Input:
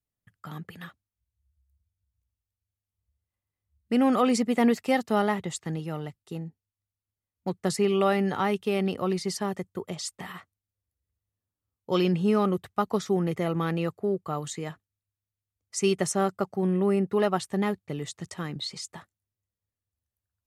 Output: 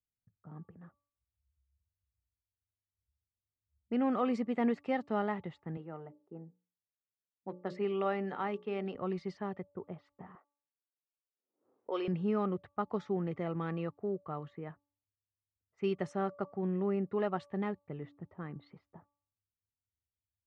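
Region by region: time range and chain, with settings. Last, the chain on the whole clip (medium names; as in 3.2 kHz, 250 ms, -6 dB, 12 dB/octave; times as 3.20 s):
5.77–8.95 s: high-pass 210 Hz + hum notches 60/120/180/240/300/360/420/480/540/600 Hz
10.35–12.08 s: high-pass 350 Hz 24 dB/octave + swell ahead of each attack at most 110 dB/s
whole clip: level-controlled noise filter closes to 410 Hz, open at -22.5 dBFS; low-pass 2.3 kHz 12 dB/octave; de-hum 287.9 Hz, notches 4; trim -8.5 dB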